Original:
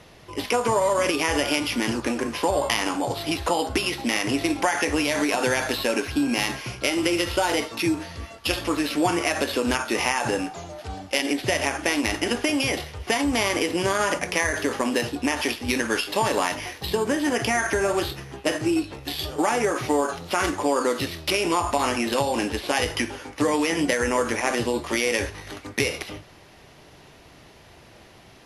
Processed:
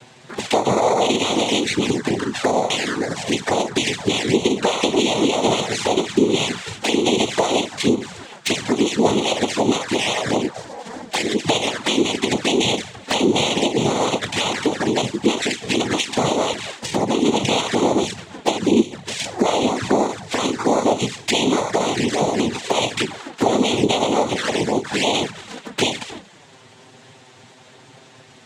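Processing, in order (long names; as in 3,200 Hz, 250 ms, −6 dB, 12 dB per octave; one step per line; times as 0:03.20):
cochlear-implant simulation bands 6
flanger swept by the level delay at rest 9.2 ms, full sweep at −21 dBFS
level +7 dB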